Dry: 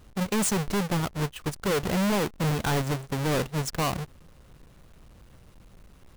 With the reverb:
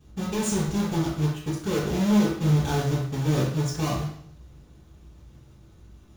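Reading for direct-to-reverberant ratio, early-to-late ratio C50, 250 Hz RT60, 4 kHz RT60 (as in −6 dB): −11.0 dB, 2.5 dB, 0.65 s, 0.70 s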